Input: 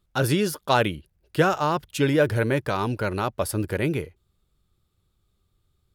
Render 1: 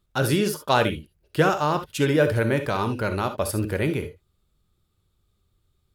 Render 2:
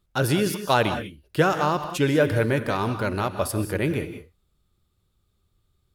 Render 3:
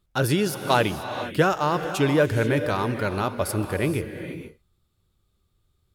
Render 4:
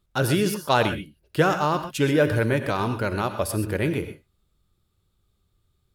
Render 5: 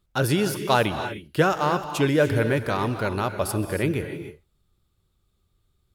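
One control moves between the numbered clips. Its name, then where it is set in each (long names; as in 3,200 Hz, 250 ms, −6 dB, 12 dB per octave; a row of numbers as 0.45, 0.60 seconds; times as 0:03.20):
reverb whose tail is shaped and stops, gate: 90, 220, 510, 150, 330 milliseconds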